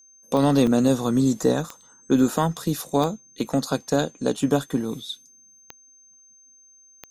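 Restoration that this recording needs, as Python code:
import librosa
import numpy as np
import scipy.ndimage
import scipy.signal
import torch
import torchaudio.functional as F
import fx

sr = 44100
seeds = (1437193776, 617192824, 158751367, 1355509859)

y = fx.fix_declick_ar(x, sr, threshold=10.0)
y = fx.notch(y, sr, hz=6300.0, q=30.0)
y = fx.fix_interpolate(y, sr, at_s=(0.67, 1.81, 3.47, 4.37), length_ms=3.0)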